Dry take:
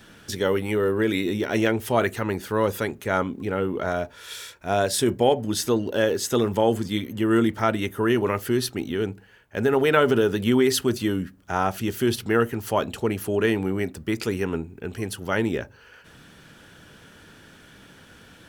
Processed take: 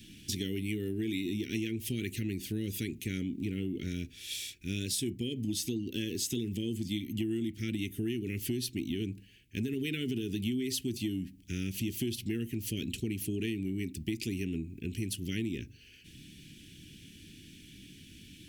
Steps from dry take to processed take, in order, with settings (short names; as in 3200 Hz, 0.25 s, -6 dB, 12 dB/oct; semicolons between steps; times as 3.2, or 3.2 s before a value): elliptic band-stop 320–2400 Hz, stop band 60 dB; compressor 10:1, threshold -30 dBFS, peak gain reduction 12.5 dB